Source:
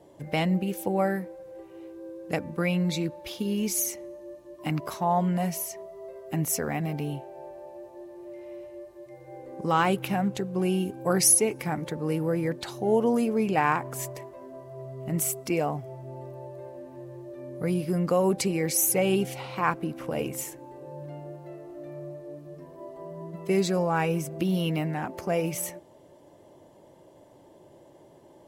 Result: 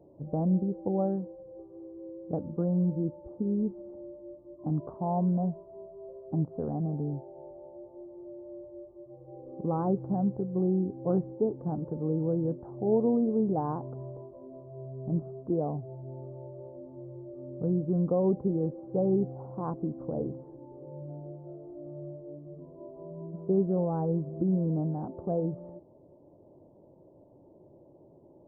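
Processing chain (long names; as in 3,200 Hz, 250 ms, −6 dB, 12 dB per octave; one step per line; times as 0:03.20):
Gaussian smoothing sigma 12 samples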